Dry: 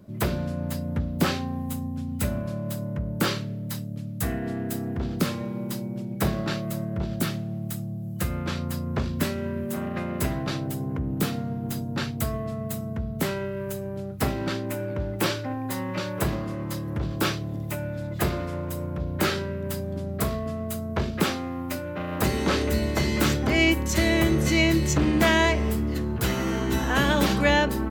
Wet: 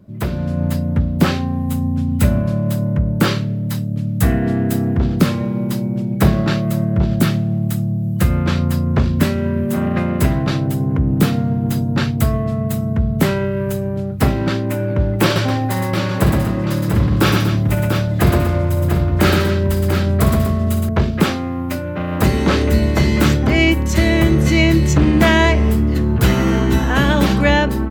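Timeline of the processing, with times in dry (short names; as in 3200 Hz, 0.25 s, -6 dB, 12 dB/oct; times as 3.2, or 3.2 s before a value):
15.24–20.89 tapped delay 60/117/242/692 ms -9.5/-4.5/-10.5/-7 dB
whole clip: tone controls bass +5 dB, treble -4 dB; AGC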